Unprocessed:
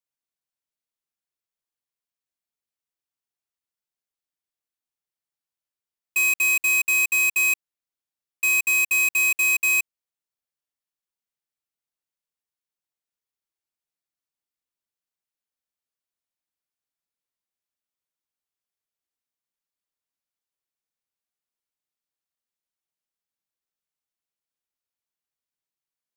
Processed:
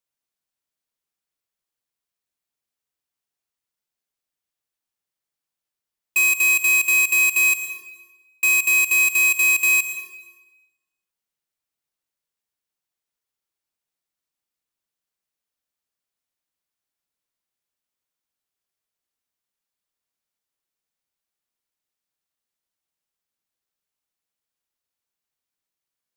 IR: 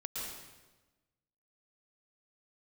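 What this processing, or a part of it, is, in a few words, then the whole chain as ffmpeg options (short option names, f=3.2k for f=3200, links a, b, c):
ducked reverb: -filter_complex "[0:a]asplit=3[a][b][c];[1:a]atrim=start_sample=2205[d];[b][d]afir=irnorm=-1:irlink=0[e];[c]apad=whole_len=1153786[f];[e][f]sidechaincompress=threshold=-25dB:ratio=8:attack=16:release=232,volume=-8.5dB[g];[a][g]amix=inputs=2:normalize=0,volume=2dB"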